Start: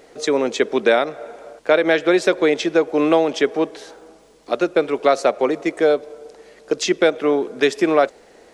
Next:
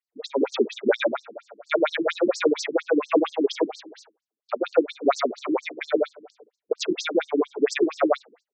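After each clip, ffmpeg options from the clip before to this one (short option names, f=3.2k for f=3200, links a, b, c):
-af "agate=range=-36dB:threshold=-39dB:ratio=16:detection=peak,aecho=1:1:131.2|169.1:0.794|0.282,afftfilt=real='re*between(b*sr/1024,240*pow(6100/240,0.5+0.5*sin(2*PI*4.3*pts/sr))/1.41,240*pow(6100/240,0.5+0.5*sin(2*PI*4.3*pts/sr))*1.41)':imag='im*between(b*sr/1024,240*pow(6100/240,0.5+0.5*sin(2*PI*4.3*pts/sr))/1.41,240*pow(6100/240,0.5+0.5*sin(2*PI*4.3*pts/sr))*1.41)':win_size=1024:overlap=0.75"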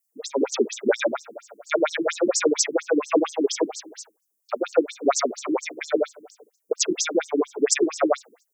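-af "aexciter=amount=9.5:drive=3.7:freq=5.7k"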